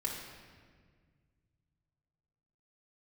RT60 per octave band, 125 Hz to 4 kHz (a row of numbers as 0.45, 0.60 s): 3.5, 2.4, 1.9, 1.6, 1.6, 1.2 s